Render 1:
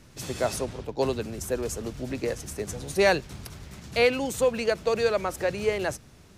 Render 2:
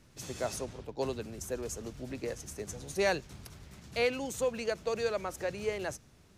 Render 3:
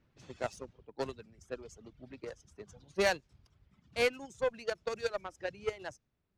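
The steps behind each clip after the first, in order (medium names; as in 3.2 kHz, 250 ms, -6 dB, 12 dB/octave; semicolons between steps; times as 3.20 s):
dynamic bell 6.4 kHz, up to +5 dB, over -51 dBFS, Q 3.4; trim -8 dB
reverb removal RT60 1.7 s; level-controlled noise filter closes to 2.8 kHz, open at -26.5 dBFS; Chebyshev shaper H 7 -20 dB, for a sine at -16 dBFS; trim +1 dB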